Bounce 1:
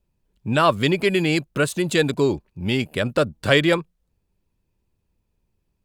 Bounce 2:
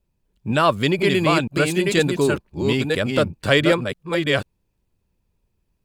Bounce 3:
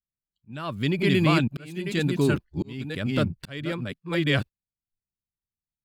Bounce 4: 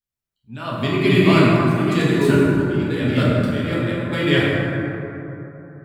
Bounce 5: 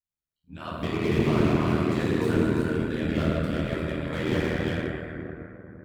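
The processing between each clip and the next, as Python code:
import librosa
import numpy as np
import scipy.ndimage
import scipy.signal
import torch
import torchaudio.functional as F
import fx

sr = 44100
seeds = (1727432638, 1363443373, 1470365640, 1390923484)

y1 = fx.reverse_delay(x, sr, ms=492, wet_db=-3.5)
y2 = fx.noise_reduce_blind(y1, sr, reduce_db=28)
y2 = fx.graphic_eq(y2, sr, hz=(125, 250, 500, 1000, 8000), db=(5, 4, -6, -3, -6))
y2 = fx.auto_swell(y2, sr, attack_ms=708.0)
y2 = y2 * 10.0 ** (-2.5 / 20.0)
y3 = fx.rev_plate(y2, sr, seeds[0], rt60_s=3.3, hf_ratio=0.35, predelay_ms=0, drr_db=-7.5)
y4 = y3 + 10.0 ** (-7.5 / 20.0) * np.pad(y3, (int(349 * sr / 1000.0), 0))[:len(y3)]
y4 = y4 * np.sin(2.0 * np.pi * 40.0 * np.arange(len(y4)) / sr)
y4 = fx.slew_limit(y4, sr, full_power_hz=98.0)
y4 = y4 * 10.0 ** (-5.0 / 20.0)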